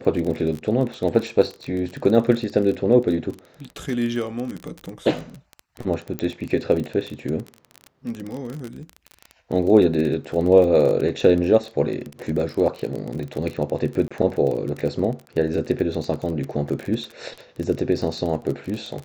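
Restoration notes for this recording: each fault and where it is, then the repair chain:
surface crackle 26 per second −26 dBFS
0:06.19: click −12 dBFS
0:14.08–0:14.11: drop-out 26 ms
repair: click removal
repair the gap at 0:14.08, 26 ms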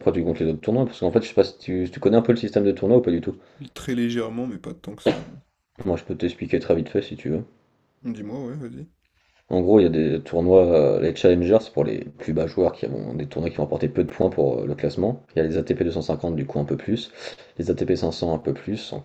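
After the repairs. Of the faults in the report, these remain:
none of them is left

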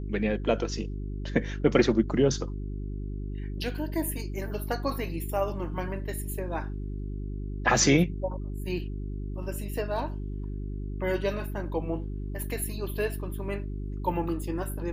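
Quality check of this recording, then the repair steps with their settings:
mains hum 50 Hz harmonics 8 −34 dBFS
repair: hum removal 50 Hz, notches 8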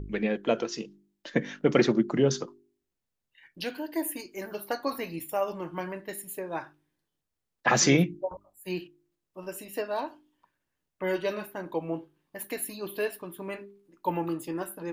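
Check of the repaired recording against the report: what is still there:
none of them is left

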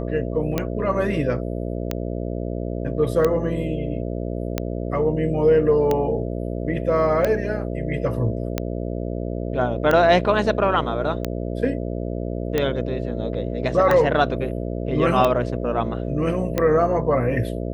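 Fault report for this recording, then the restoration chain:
mains buzz 60 Hz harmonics 11 −27 dBFS
scratch tick 45 rpm −8 dBFS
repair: click removal
hum removal 60 Hz, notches 11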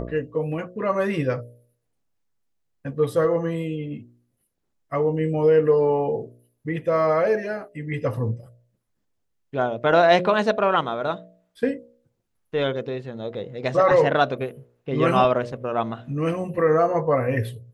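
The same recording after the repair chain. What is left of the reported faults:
none of them is left

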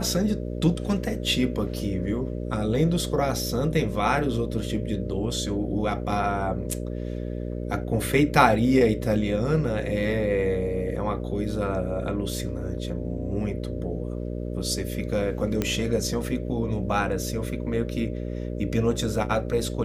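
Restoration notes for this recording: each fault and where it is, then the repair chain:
mains buzz 60 Hz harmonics 10 −31 dBFS
0:15.62: click −11 dBFS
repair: click removal
hum removal 60 Hz, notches 10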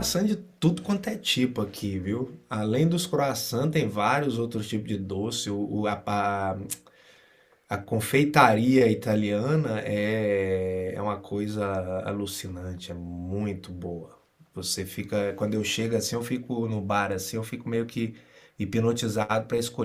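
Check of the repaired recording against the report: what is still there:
none of them is left

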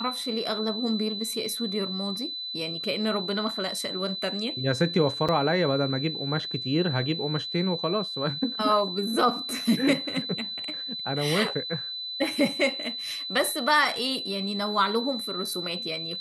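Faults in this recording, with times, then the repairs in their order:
whistle 4,000 Hz −32 dBFS
0:05.28–0:05.29: drop-out 6.8 ms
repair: notch filter 4,000 Hz, Q 30
repair the gap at 0:05.28, 6.8 ms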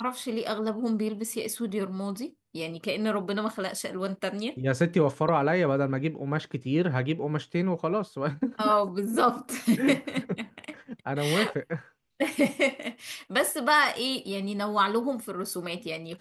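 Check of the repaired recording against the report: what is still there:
none of them is left

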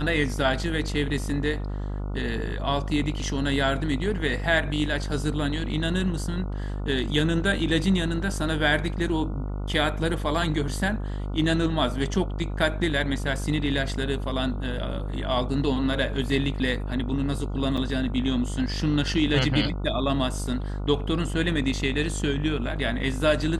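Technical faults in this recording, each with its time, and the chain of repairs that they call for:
mains buzz 50 Hz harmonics 29 −30 dBFS
0:17.77–0:17.78: drop-out 6 ms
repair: hum removal 50 Hz, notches 29
repair the gap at 0:17.77, 6 ms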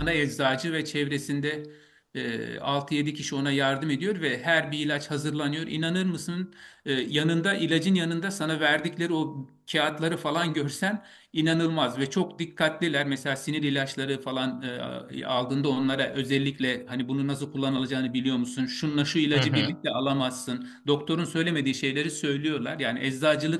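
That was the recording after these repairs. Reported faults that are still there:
none of them is left

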